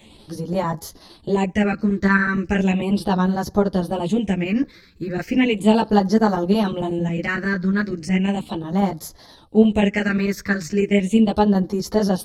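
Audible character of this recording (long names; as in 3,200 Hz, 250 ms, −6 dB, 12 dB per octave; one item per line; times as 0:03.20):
phaser sweep stages 6, 0.36 Hz, lowest notch 770–2,600 Hz
chopped level 11 Hz, depth 65%, duty 85%
a shimmering, thickened sound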